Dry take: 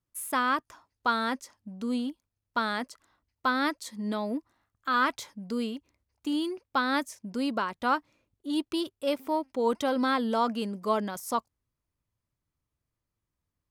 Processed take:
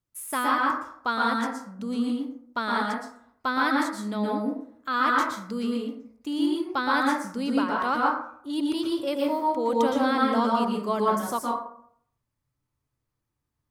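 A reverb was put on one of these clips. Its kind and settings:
dense smooth reverb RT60 0.63 s, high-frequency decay 0.45×, pre-delay 105 ms, DRR −2.5 dB
level −1 dB

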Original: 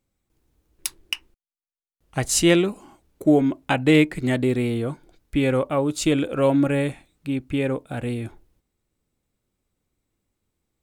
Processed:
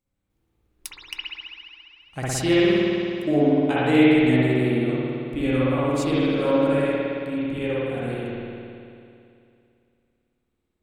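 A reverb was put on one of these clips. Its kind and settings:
spring reverb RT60 2.6 s, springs 55 ms, chirp 25 ms, DRR −8.5 dB
level −8.5 dB

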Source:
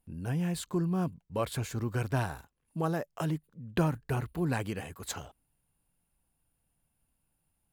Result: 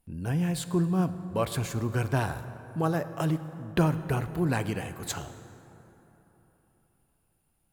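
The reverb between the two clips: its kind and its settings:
dense smooth reverb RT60 3.7 s, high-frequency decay 0.45×, DRR 11 dB
level +3.5 dB

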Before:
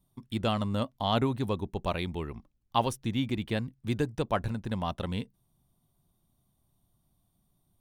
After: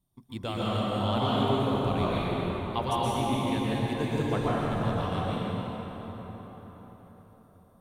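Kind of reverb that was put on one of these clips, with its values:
dense smooth reverb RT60 4.9 s, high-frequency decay 0.6×, pre-delay 110 ms, DRR −8.5 dB
level −6 dB

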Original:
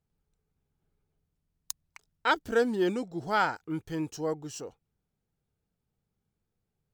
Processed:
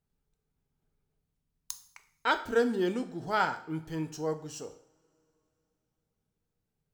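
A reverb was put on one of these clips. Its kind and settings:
coupled-rooms reverb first 0.54 s, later 3.4 s, from −27 dB, DRR 8 dB
level −2 dB

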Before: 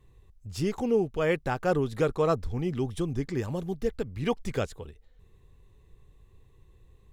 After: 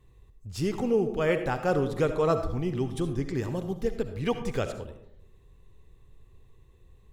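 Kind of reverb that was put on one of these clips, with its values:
comb and all-pass reverb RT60 0.76 s, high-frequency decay 0.35×, pre-delay 30 ms, DRR 8 dB

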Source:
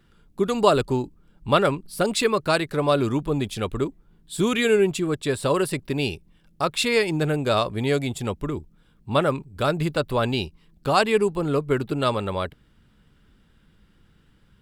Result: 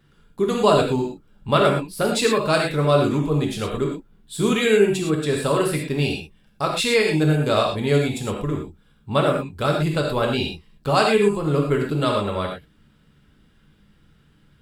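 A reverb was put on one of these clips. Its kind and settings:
reverb whose tail is shaped and stops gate 140 ms flat, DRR 0 dB
level −1 dB

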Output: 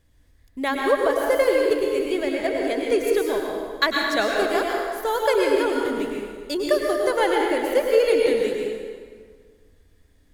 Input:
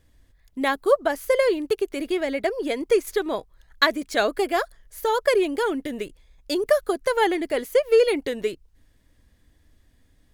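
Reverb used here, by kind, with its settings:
dense smooth reverb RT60 1.8 s, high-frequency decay 0.75×, pre-delay 90 ms, DRR −1 dB
level −2 dB

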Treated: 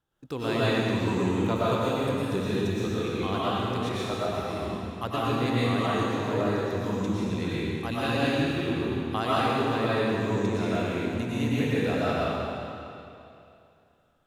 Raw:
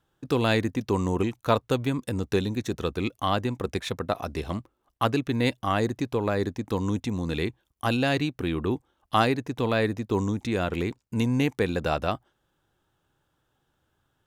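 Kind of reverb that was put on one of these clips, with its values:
comb and all-pass reverb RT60 2.7 s, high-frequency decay 0.95×, pre-delay 75 ms, DRR −9 dB
level −9.5 dB

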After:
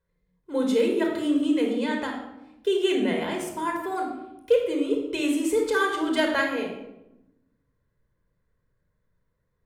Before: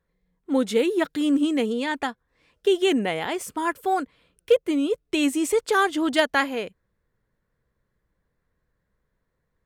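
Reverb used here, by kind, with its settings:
rectangular room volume 3,200 cubic metres, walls furnished, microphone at 5 metres
level −7 dB

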